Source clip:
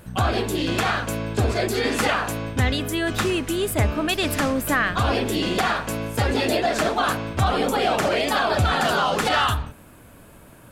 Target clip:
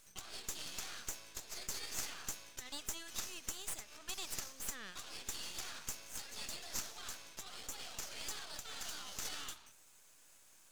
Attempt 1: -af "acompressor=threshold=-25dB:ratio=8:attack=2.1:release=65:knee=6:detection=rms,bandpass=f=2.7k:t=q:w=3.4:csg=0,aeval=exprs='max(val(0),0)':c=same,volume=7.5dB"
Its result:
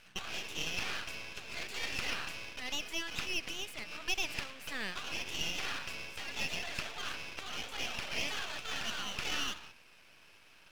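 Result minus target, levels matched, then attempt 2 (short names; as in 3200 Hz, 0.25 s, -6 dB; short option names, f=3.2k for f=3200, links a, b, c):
8000 Hz band -9.0 dB
-af "acompressor=threshold=-25dB:ratio=8:attack=2.1:release=65:knee=6:detection=rms,bandpass=f=6.3k:t=q:w=3.4:csg=0,aeval=exprs='max(val(0),0)':c=same,volume=7.5dB"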